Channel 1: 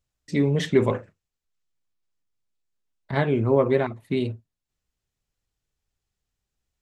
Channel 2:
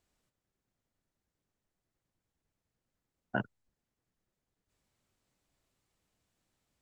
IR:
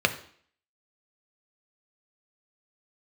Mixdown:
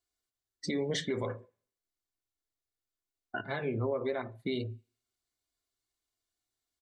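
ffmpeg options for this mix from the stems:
-filter_complex "[0:a]equalizer=f=760:t=o:w=0.8:g=2.5,adelay=350,volume=0.562,asplit=2[s0][s1];[s1]volume=0.133[s2];[1:a]aecho=1:1:2.8:0.72,volume=0.841,asplit=3[s3][s4][s5];[s4]volume=0.141[s6];[s5]apad=whole_len=315848[s7];[s0][s7]sidechaincompress=threshold=0.0126:ratio=8:attack=33:release=1190[s8];[2:a]atrim=start_sample=2205[s9];[s2][s6]amix=inputs=2:normalize=0[s10];[s10][s9]afir=irnorm=-1:irlink=0[s11];[s8][s3][s11]amix=inputs=3:normalize=0,highshelf=f=2100:g=12,afftdn=nr=17:nf=-40,alimiter=limit=0.0668:level=0:latency=1:release=385"

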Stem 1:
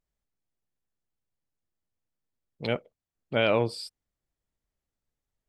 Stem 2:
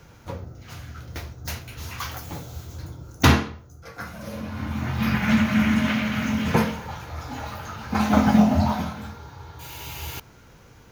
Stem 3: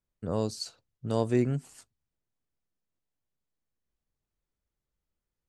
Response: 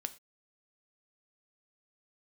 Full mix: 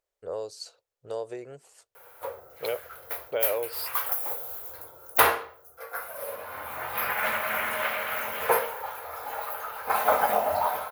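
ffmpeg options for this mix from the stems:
-filter_complex "[0:a]acompressor=threshold=0.0282:ratio=6,volume=1.12[s0];[1:a]equalizer=f=1200:w=0.43:g=12.5,aexciter=amount=11.3:drive=7.9:freq=9000,adelay=1950,volume=0.251[s1];[2:a]acompressor=threshold=0.0447:ratio=6,volume=0.668[s2];[s0][s1][s2]amix=inputs=3:normalize=0,lowshelf=f=330:t=q:w=3:g=-13"

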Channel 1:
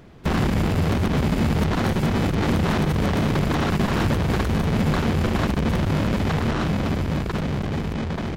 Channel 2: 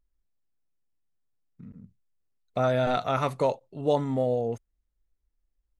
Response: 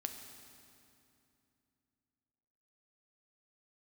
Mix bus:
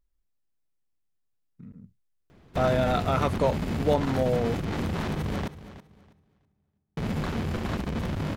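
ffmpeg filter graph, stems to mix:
-filter_complex "[0:a]adelay=2300,volume=0.335,asplit=3[s0][s1][s2];[s0]atrim=end=5.48,asetpts=PTS-STARTPTS,afade=t=out:st=5.476:d=0.004:c=hsin[s3];[s1]atrim=start=5.48:end=6.97,asetpts=PTS-STARTPTS,volume=0[s4];[s2]atrim=start=6.97,asetpts=PTS-STARTPTS,afade=t=in:d=0.004:c=hsin[s5];[s3][s4][s5]concat=n=3:v=0:a=1,asplit=3[s6][s7][s8];[s7]volume=0.141[s9];[s8]volume=0.2[s10];[1:a]volume=1[s11];[2:a]atrim=start_sample=2205[s12];[s9][s12]afir=irnorm=-1:irlink=0[s13];[s10]aecho=0:1:325|650|975|1300:1|0.22|0.0484|0.0106[s14];[s6][s11][s13][s14]amix=inputs=4:normalize=0"

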